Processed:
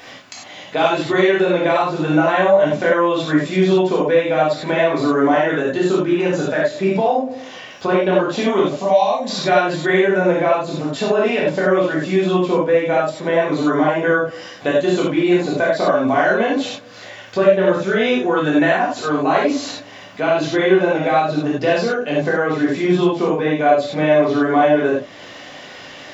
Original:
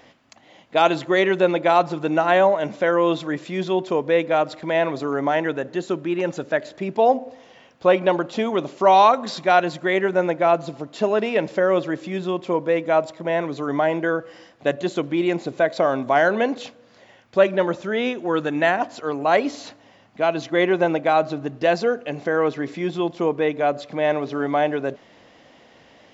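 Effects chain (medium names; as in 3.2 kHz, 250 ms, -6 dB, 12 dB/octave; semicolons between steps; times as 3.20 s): compression 6:1, threshold -21 dBFS, peak gain reduction 11 dB; 8.74–9.30 s: static phaser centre 360 Hz, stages 6; gated-style reverb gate 120 ms flat, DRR -6.5 dB; tape noise reduction on one side only encoder only; trim +2 dB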